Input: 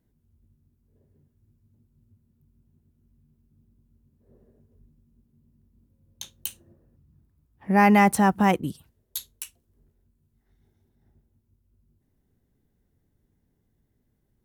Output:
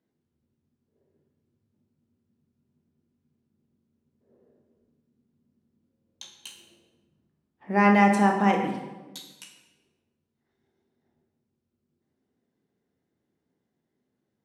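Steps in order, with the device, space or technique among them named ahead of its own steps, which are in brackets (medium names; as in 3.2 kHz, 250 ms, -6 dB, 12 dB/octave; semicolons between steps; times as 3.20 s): supermarket ceiling speaker (band-pass 240–5800 Hz; reverberation RT60 1.2 s, pre-delay 12 ms, DRR 2 dB); trim -3 dB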